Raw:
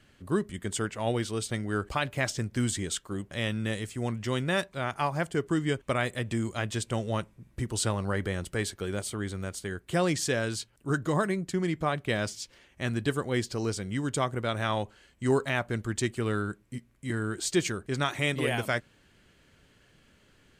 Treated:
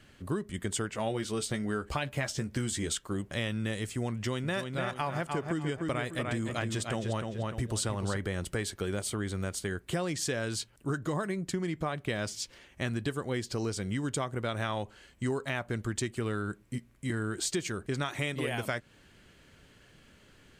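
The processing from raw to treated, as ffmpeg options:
ffmpeg -i in.wav -filter_complex "[0:a]asettb=1/sr,asplit=3[link_01][link_02][link_03];[link_01]atrim=end=0.934[link_04];[link_02]atrim=start=0.93:end=2.93,asetpts=PTS-STARTPTS,afade=type=in:duration=0.004:curve=qsin,afade=type=out:start_time=1.996:duration=0.004:curve=qsin,asplit=2[link_05][link_06];[link_06]adelay=14,volume=-7dB[link_07];[link_05][link_07]amix=inputs=2:normalize=0,atrim=end_sample=88200[link_08];[link_03]atrim=start=2.926[link_09];[link_04][link_08]acrossfade=duration=0.004:curve1=hsin:curve2=qsin[link_10];[link_10][link_09]acrossfade=duration=0.004:curve1=qsin:curve2=hsin,asettb=1/sr,asplit=3[link_11][link_12][link_13];[link_11]atrim=end=4.144[link_14];[link_12]atrim=start=4.14:end=8.17,asetpts=PTS-STARTPTS,afade=type=in:duration=0.004:curve=qsin,afade=type=out:start_time=4.026:duration=0.004:curve=qsin,asplit=2[link_15][link_16];[link_16]adelay=298,lowpass=frequency=4900:poles=1,volume=-6dB,asplit=2[link_17][link_18];[link_18]adelay=298,lowpass=frequency=4900:poles=1,volume=0.33,asplit=2[link_19][link_20];[link_20]adelay=298,lowpass=frequency=4900:poles=1,volume=0.33,asplit=2[link_21][link_22];[link_22]adelay=298,lowpass=frequency=4900:poles=1,volume=0.33[link_23];[link_15][link_17][link_19][link_21][link_23]amix=inputs=5:normalize=0,atrim=end_sample=177723[link_24];[link_13]atrim=start=8.166[link_25];[link_14][link_24]acrossfade=duration=0.004:curve1=hsin:curve2=qsin[link_26];[link_26][link_25]acrossfade=duration=0.004:curve1=qsin:curve2=hsin,acompressor=threshold=-32dB:ratio=6,volume=3dB" out.wav

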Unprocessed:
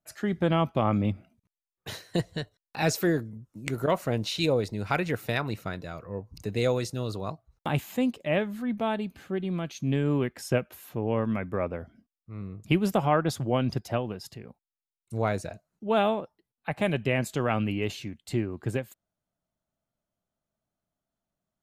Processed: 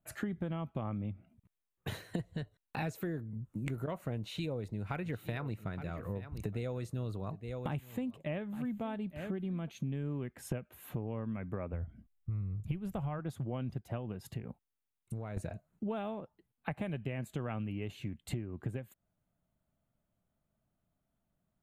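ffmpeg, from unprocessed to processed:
ffmpeg -i in.wav -filter_complex "[0:a]asplit=3[link_01][link_02][link_03];[link_01]afade=type=out:start_time=5.03:duration=0.02[link_04];[link_02]aecho=1:1:867:0.126,afade=type=in:start_time=5.03:duration=0.02,afade=type=out:start_time=9.68:duration=0.02[link_05];[link_03]afade=type=in:start_time=9.68:duration=0.02[link_06];[link_04][link_05][link_06]amix=inputs=3:normalize=0,asplit=3[link_07][link_08][link_09];[link_07]afade=type=out:start_time=11.72:duration=0.02[link_10];[link_08]asubboost=boost=5:cutoff=110,afade=type=in:start_time=11.72:duration=0.02,afade=type=out:start_time=13.18:duration=0.02[link_11];[link_09]afade=type=in:start_time=13.18:duration=0.02[link_12];[link_10][link_11][link_12]amix=inputs=3:normalize=0,asettb=1/sr,asplit=3[link_13][link_14][link_15];[link_13]atrim=end=14.394[link_16];[link_14]atrim=start=14.39:end=15.37,asetpts=PTS-STARTPTS,afade=type=in:duration=0.004:curve=qsin,afade=type=out:start_time=0.976:duration=0.004:curve=qsin,acompressor=threshold=-41dB:ratio=6:attack=3.2:release=140:knee=1:detection=peak[link_17];[link_15]atrim=start=15.366[link_18];[link_16][link_17]acrossfade=duration=0.004:curve1=hsin:curve2=qsin[link_19];[link_19][link_18]acrossfade=duration=0.004:curve1=qsin:curve2=hsin,bass=frequency=250:gain=7,treble=frequency=4000:gain=-2,acompressor=threshold=-36dB:ratio=10,equalizer=frequency=5200:width=2:gain=-11.5,volume=1.5dB" out.wav

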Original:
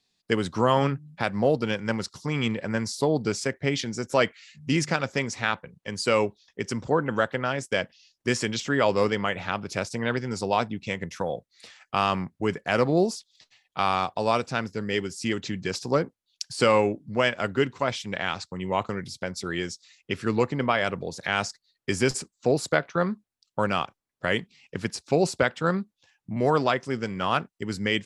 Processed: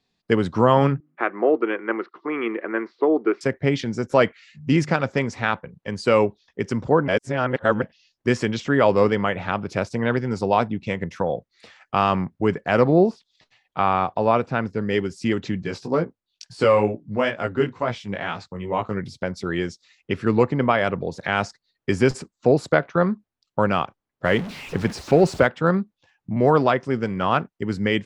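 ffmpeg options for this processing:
ffmpeg -i in.wav -filter_complex "[0:a]asettb=1/sr,asplit=3[link_01][link_02][link_03];[link_01]atrim=end=1.004[link_04];[link_02]atrim=start=1:end=3.41,asetpts=PTS-STARTPTS,afade=type=in:duration=0.004:curve=qsin,afade=type=out:start_time=2.406:duration=0.004:curve=qsin,highpass=frequency=340:width=0.5412,highpass=frequency=340:width=1.3066,equalizer=frequency=340:width_type=q:width=4:gain=10,equalizer=frequency=550:width_type=q:width=4:gain=-6,equalizer=frequency=870:width_type=q:width=4:gain=-5,equalizer=frequency=1200:width_type=q:width=4:gain=7,equalizer=frequency=2000:width_type=q:width=4:gain=3,lowpass=frequency=2500:width=0.5412,lowpass=frequency=2500:width=1.3066[link_05];[link_03]atrim=start=3.406[link_06];[link_04][link_05]acrossfade=duration=0.004:curve1=hsin:curve2=qsin[link_07];[link_07][link_06]acrossfade=duration=0.004:curve1=qsin:curve2=hsin,asettb=1/sr,asplit=3[link_08][link_09][link_10];[link_08]atrim=end=12.874[link_11];[link_09]atrim=start=12.87:end=14.82,asetpts=PTS-STARTPTS,afade=type=in:duration=0.004:curve=qsin,afade=type=out:start_time=1.946:duration=0.004:curve=qsin,acrossover=split=3400[link_12][link_13];[link_13]acompressor=threshold=-53dB:ratio=4:attack=1:release=60[link_14];[link_12][link_14]amix=inputs=2:normalize=0[link_15];[link_10]atrim=start=14.816[link_16];[link_11][link_15]acrossfade=duration=0.004:curve1=hsin:curve2=qsin[link_17];[link_17][link_16]acrossfade=duration=0.004:curve1=qsin:curve2=hsin,asettb=1/sr,asplit=3[link_18][link_19][link_20];[link_18]atrim=end=15.624[link_21];[link_19]atrim=start=15.62:end=18.97,asetpts=PTS-STARTPTS,afade=type=in:duration=0.004:curve=qsin,afade=type=out:start_time=3.346:duration=0.004:curve=qsin,flanger=delay=17:depth=3.3:speed=2.2[link_22];[link_20]atrim=start=18.966[link_23];[link_21][link_22]acrossfade=duration=0.004:curve1=hsin:curve2=qsin[link_24];[link_24][link_23]acrossfade=duration=0.004:curve1=qsin:curve2=hsin,asettb=1/sr,asplit=3[link_25][link_26][link_27];[link_25]atrim=end=24.254[link_28];[link_26]atrim=start=24.25:end=25.47,asetpts=PTS-STARTPTS,afade=type=in:duration=0.004:curve=qsin,afade=type=out:start_time=1.216:duration=0.004:curve=qsin,aeval=exprs='val(0)+0.5*0.0251*sgn(val(0))':channel_layout=same[link_29];[link_27]atrim=start=25.466[link_30];[link_28][link_29]acrossfade=duration=0.004:curve1=hsin:curve2=qsin[link_31];[link_31][link_30]acrossfade=duration=0.004:curve1=qsin:curve2=hsin,asplit=3[link_32][link_33][link_34];[link_32]atrim=end=7.082[link_35];[link_33]atrim=start=7.078:end=7.822,asetpts=PTS-STARTPTS,areverse[link_36];[link_34]atrim=start=7.818[link_37];[link_35][link_36]acrossfade=duration=0.004:curve1=hsin:curve2=hsin[link_38];[link_38][link_37]acrossfade=duration=0.004:curve1=hsin:curve2=hsin,lowpass=frequency=1500:poles=1,volume=6dB" out.wav

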